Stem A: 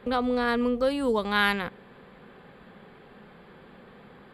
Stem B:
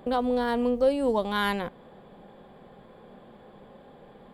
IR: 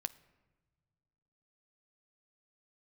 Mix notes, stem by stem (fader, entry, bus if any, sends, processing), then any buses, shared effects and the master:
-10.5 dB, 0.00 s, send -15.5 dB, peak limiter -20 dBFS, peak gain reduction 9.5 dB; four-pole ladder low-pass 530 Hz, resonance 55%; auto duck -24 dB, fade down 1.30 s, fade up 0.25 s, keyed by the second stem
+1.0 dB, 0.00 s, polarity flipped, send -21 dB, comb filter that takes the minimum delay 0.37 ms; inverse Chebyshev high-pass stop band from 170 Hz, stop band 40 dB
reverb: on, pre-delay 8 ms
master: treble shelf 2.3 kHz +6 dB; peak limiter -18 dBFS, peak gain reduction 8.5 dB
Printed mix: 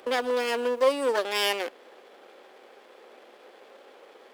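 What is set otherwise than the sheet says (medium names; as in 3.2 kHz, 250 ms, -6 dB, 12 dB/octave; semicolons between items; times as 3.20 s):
stem B: polarity flipped; master: missing peak limiter -18 dBFS, peak gain reduction 8.5 dB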